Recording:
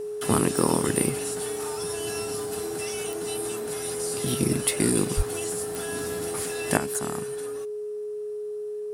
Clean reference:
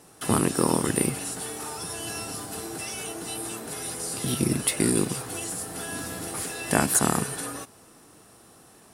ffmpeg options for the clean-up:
-filter_complex "[0:a]adeclick=t=4,bandreject=f=420:w=30,asplit=3[s0][s1][s2];[s0]afade=t=out:st=5.16:d=0.02[s3];[s1]highpass=f=140:w=0.5412,highpass=f=140:w=1.3066,afade=t=in:st=5.16:d=0.02,afade=t=out:st=5.28:d=0.02[s4];[s2]afade=t=in:st=5.28:d=0.02[s5];[s3][s4][s5]amix=inputs=3:normalize=0,asetnsamples=n=441:p=0,asendcmd='6.77 volume volume 9dB',volume=1"

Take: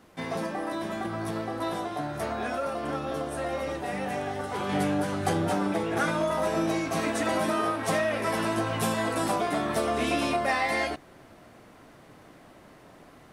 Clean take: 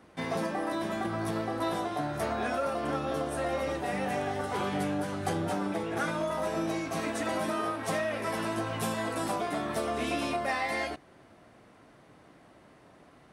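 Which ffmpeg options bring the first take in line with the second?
-af "agate=range=0.0891:threshold=0.00631,asetnsamples=n=441:p=0,asendcmd='4.69 volume volume -4.5dB',volume=1"

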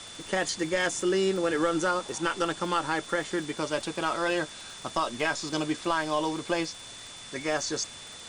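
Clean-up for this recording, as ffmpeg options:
-af "adeclick=t=4,bandreject=f=3500:w=30,afftdn=nr=30:nf=-44"

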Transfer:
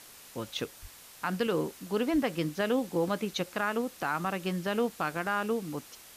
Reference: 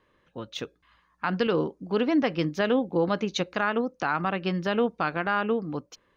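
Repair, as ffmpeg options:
-filter_complex "[0:a]asplit=3[s0][s1][s2];[s0]afade=t=out:st=0.81:d=0.02[s3];[s1]highpass=f=140:w=0.5412,highpass=f=140:w=1.3066,afade=t=in:st=0.81:d=0.02,afade=t=out:st=0.93:d=0.02[s4];[s2]afade=t=in:st=0.93:d=0.02[s5];[s3][s4][s5]amix=inputs=3:normalize=0,asplit=3[s6][s7][s8];[s6]afade=t=out:st=2.12:d=0.02[s9];[s7]highpass=f=140:w=0.5412,highpass=f=140:w=1.3066,afade=t=in:st=2.12:d=0.02,afade=t=out:st=2.24:d=0.02[s10];[s8]afade=t=in:st=2.24:d=0.02[s11];[s9][s10][s11]amix=inputs=3:normalize=0,afwtdn=0.0032,asetnsamples=n=441:p=0,asendcmd='0.71 volume volume 4.5dB',volume=1"

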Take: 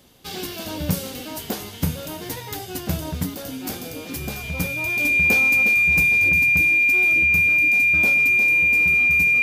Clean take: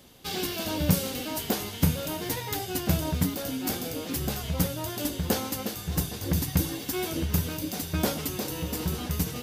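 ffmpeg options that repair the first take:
-af "bandreject=f=2400:w=30,asetnsamples=n=441:p=0,asendcmd='6.29 volume volume 4.5dB',volume=1"

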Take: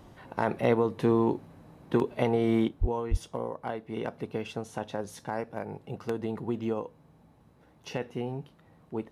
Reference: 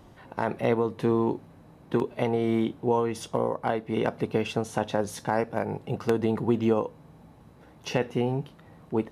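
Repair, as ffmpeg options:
-filter_complex "[0:a]asplit=3[s0][s1][s2];[s0]afade=t=out:st=2.8:d=0.02[s3];[s1]highpass=f=140:w=0.5412,highpass=f=140:w=1.3066,afade=t=in:st=2.8:d=0.02,afade=t=out:st=2.92:d=0.02[s4];[s2]afade=t=in:st=2.92:d=0.02[s5];[s3][s4][s5]amix=inputs=3:normalize=0,asplit=3[s6][s7][s8];[s6]afade=t=out:st=3.1:d=0.02[s9];[s7]highpass=f=140:w=0.5412,highpass=f=140:w=1.3066,afade=t=in:st=3.1:d=0.02,afade=t=out:st=3.22:d=0.02[s10];[s8]afade=t=in:st=3.22:d=0.02[s11];[s9][s10][s11]amix=inputs=3:normalize=0,asetnsamples=n=441:p=0,asendcmd='2.68 volume volume 7.5dB',volume=1"

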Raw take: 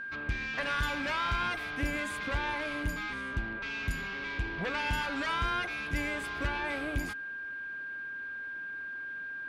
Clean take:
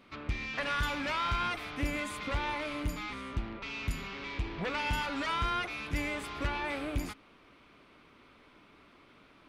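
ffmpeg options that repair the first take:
-af "bandreject=f=1600:w=30"

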